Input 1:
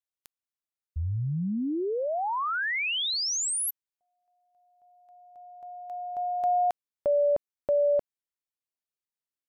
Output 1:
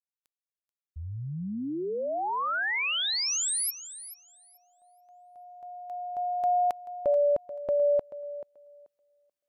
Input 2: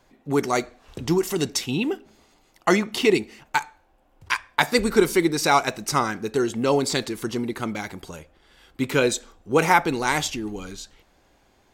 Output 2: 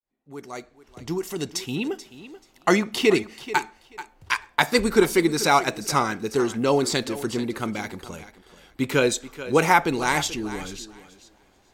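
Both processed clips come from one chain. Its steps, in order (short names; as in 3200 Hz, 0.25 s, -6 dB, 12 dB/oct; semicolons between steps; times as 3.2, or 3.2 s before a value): opening faded in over 2.54 s; thinning echo 0.434 s, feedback 18%, high-pass 190 Hz, level -14 dB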